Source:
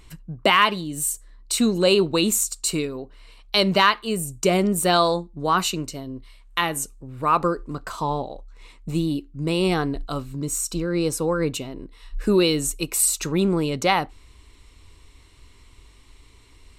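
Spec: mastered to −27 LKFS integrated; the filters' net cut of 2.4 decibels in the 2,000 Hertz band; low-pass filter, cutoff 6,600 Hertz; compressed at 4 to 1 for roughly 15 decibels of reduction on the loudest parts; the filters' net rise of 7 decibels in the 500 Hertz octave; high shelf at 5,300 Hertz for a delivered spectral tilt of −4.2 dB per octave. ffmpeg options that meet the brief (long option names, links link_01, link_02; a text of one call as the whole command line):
ffmpeg -i in.wav -af "lowpass=6600,equalizer=frequency=500:width_type=o:gain=9,equalizer=frequency=2000:width_type=o:gain=-4,highshelf=frequency=5300:gain=3,acompressor=threshold=-27dB:ratio=4,volume=3.5dB" out.wav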